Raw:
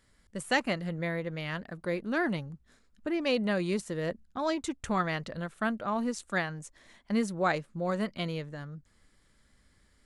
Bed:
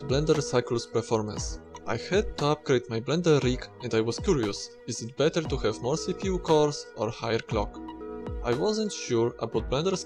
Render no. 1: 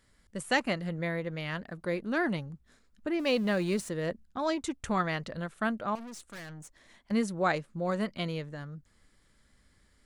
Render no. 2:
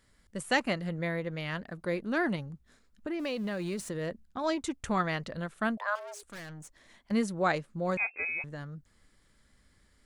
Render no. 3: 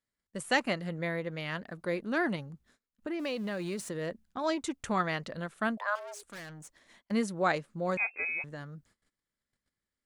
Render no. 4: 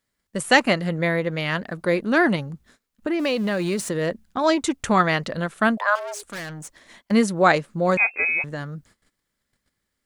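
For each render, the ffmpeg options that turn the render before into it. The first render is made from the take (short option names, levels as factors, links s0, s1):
-filter_complex "[0:a]asettb=1/sr,asplit=3[s0][s1][s2];[s0]atrim=end=3.194[s3];[s1]atrim=start=3.19:end=3.89,asetpts=PTS-STARTPTS,afade=t=in:d=0.004:c=qsin,afade=t=out:st=0.696:d=0.004:c=qsin,aeval=exprs='val(0)+0.5*0.00668*sgn(val(0))':c=same[s4];[s2]atrim=start=3.886[s5];[s3][s4]acrossfade=d=0.004:c1=hsin:c2=qsin[s6];[s6][s5]acrossfade=d=0.004:c1=qsin:c2=hsin,asettb=1/sr,asplit=3[s7][s8][s9];[s7]atrim=end=5.954[s10];[s8]atrim=start=5.95:end=7.11,asetpts=PTS-STARTPTS,afade=t=in:d=0.004:c=qsin,afade=t=out:st=1.156:d=0.004:c=qsin,aeval=exprs='(tanh(126*val(0)+0.4)-tanh(0.4))/126':c=same[s11];[s9]atrim=start=7.106[s12];[s10][s11]acrossfade=d=0.004:c1=hsin:c2=qsin[s13];[s13][s12]acrossfade=d=0.004:c1=qsin:c2=hsin"
-filter_complex "[0:a]asettb=1/sr,asplit=3[s0][s1][s2];[s0]atrim=end=2.354[s3];[s1]atrim=start=2.35:end=4.44,asetpts=PTS-STARTPTS,afade=t=in:d=0.004:c=qsin,afade=t=out:st=2.086:d=0.004:c=qsin,acompressor=threshold=0.0316:ratio=6:attack=3.2:release=140:knee=1:detection=peak[s4];[s2]atrim=start=4.436[s5];[s3][s4]acrossfade=d=0.004:c1=hsin:c2=qsin[s6];[s6][s5]acrossfade=d=0.004:c1=qsin:c2=hsin,asettb=1/sr,asplit=3[s7][s8][s9];[s7]atrim=end=5.774[s10];[s8]atrim=start=5.77:end=6.23,asetpts=PTS-STARTPTS,afade=t=in:d=0.004:c=qsin,afade=t=out:st=0.456:d=0.004:c=qsin,afreqshift=410[s11];[s9]atrim=start=6.226[s12];[s10][s11]acrossfade=d=0.004:c1=hsin:c2=qsin[s13];[s13][s12]acrossfade=d=0.004:c1=qsin:c2=hsin,asettb=1/sr,asplit=3[s14][s15][s16];[s14]atrim=end=7.974[s17];[s15]atrim=start=7.97:end=8.44,asetpts=PTS-STARTPTS,afade=t=in:d=0.004:c=qsin,afade=t=out:st=0.466:d=0.004:c=qsin,lowpass=f=2300:t=q:w=0.5098,lowpass=f=2300:t=q:w=0.6013,lowpass=f=2300:t=q:w=0.9,lowpass=f=2300:t=q:w=2.563,afreqshift=-2700[s18];[s16]atrim=start=8.436[s19];[s17][s18]acrossfade=d=0.004:c1=hsin:c2=qsin[s20];[s20][s19]acrossfade=d=0.004:c1=qsin:c2=hsin"
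-af "agate=range=0.0794:threshold=0.00112:ratio=16:detection=peak,lowshelf=f=86:g=-11.5"
-af "volume=3.76"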